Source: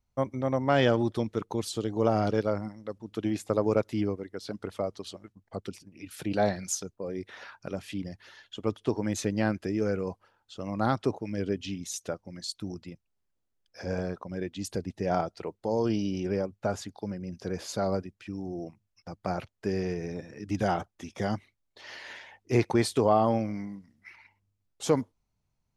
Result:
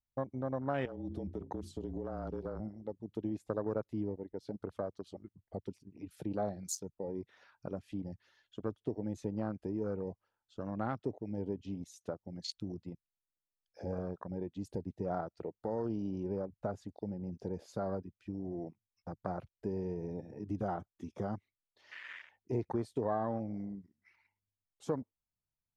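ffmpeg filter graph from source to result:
-filter_complex "[0:a]asettb=1/sr,asplit=3[s0][s1][s2];[s0]atrim=end=0.854[s3];[s1]atrim=start=0.85:end=2.6,asetpts=PTS-STARTPTS,afade=t=in:d=0.004:c=qsin,afade=t=out:st=1.746:d=0.004:c=qsin,bandreject=f=60:t=h:w=6,bandreject=f=120:t=h:w=6,bandreject=f=180:t=h:w=6,bandreject=f=240:t=h:w=6,bandreject=f=300:t=h:w=6,bandreject=f=360:t=h:w=6,bandreject=f=420:t=h:w=6,acompressor=threshold=0.0355:ratio=20:attack=3.2:release=140:knee=1:detection=peak,afreqshift=-30[s4];[s2]atrim=start=2.596[s5];[s3][s4]acrossfade=d=0.004:c1=hsin:c2=qsin[s6];[s6][s5]acrossfade=d=0.004:c1=qsin:c2=hsin,acompressor=threshold=0.0141:ratio=2,afwtdn=0.00891,volume=0.891"

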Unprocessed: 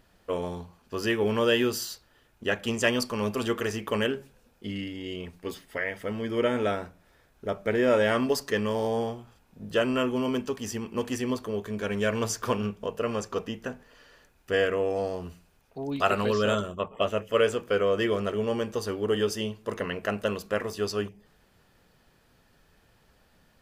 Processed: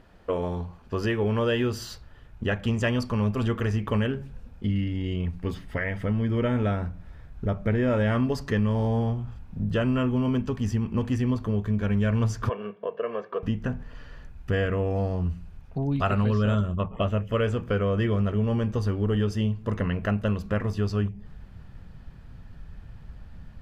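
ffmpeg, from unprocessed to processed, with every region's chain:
-filter_complex "[0:a]asettb=1/sr,asplit=3[s0][s1][s2];[s0]atrim=end=12.494[s3];[s1]atrim=start=12.49:end=13.43,asetpts=PTS-STARTPTS,afade=t=in:d=0.004:c=qsin,afade=t=out:st=0.936:d=0.004:c=qsin,highpass=f=330:w=0.5412,highpass=f=330:w=1.3066,equalizer=f=380:t=q:w=4:g=-3,equalizer=f=570:t=q:w=4:g=-7,equalizer=f=1100:t=q:w=4:g=-9,equalizer=f=1700:t=q:w=4:g=-4,equalizer=f=2500:t=q:w=4:g=-8,lowpass=f=2700:w=0.5412,lowpass=f=2700:w=1.3066,aecho=1:1:1.8:0.75,atrim=end_sample=41454[s4];[s2]atrim=start=13.426[s5];[s3][s4]acrossfade=d=0.004:c1=hsin:c2=qsin[s6];[s6][s5]acrossfade=d=0.004:c1=qsin:c2=hsin,lowpass=f=1700:p=1,asubboost=boost=7:cutoff=150,acompressor=threshold=0.0178:ratio=2,volume=2.51"

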